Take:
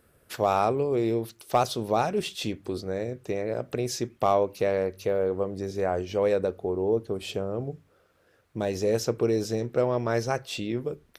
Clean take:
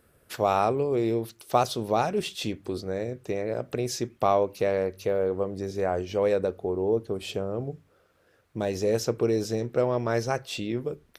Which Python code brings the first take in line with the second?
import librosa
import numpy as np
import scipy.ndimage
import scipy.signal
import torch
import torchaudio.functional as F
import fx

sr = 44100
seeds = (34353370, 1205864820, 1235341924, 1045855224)

y = fx.fix_declip(x, sr, threshold_db=-12.0)